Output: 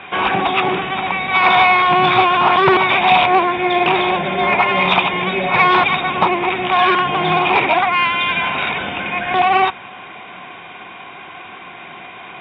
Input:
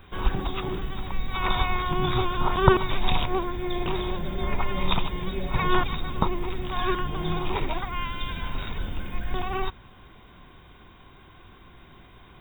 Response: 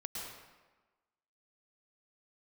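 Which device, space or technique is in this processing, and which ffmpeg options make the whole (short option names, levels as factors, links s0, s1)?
overdrive pedal into a guitar cabinet: -filter_complex "[0:a]asplit=2[s0][s1];[s1]highpass=f=720:p=1,volume=25.1,asoftclip=type=tanh:threshold=0.891[s2];[s0][s2]amix=inputs=2:normalize=0,lowpass=f=6500:p=1,volume=0.501,highpass=110,equalizer=f=180:t=q:w=4:g=4,equalizer=f=730:t=q:w=4:g=8,equalizer=f=2400:t=q:w=4:g=8,lowpass=f=3400:w=0.5412,lowpass=f=3400:w=1.3066,volume=0.668"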